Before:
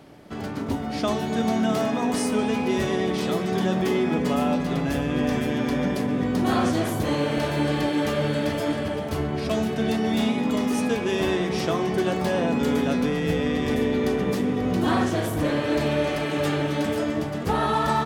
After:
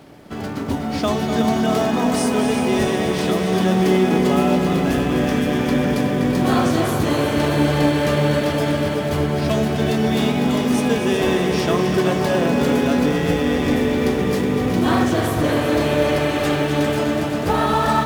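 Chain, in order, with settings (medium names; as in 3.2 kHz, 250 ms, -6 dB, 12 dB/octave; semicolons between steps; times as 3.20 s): in parallel at -12 dB: companded quantiser 4-bit; on the sum: multi-head delay 123 ms, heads second and third, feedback 74%, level -9.5 dB; trim +2 dB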